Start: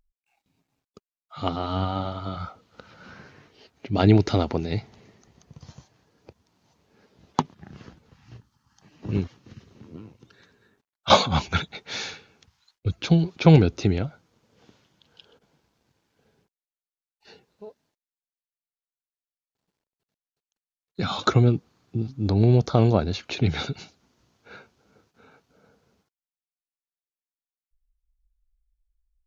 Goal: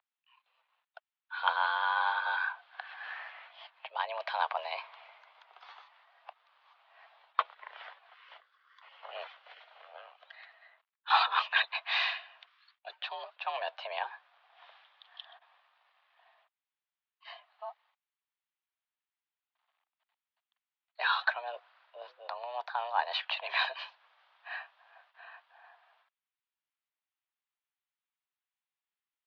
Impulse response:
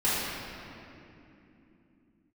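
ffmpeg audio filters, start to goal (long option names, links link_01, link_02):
-af "areverse,acompressor=threshold=-26dB:ratio=12,areverse,highpass=frequency=530:width_type=q:width=0.5412,highpass=frequency=530:width_type=q:width=1.307,lowpass=frequency=3400:width_type=q:width=0.5176,lowpass=frequency=3400:width_type=q:width=0.7071,lowpass=frequency=3400:width_type=q:width=1.932,afreqshift=240,volume=6dB"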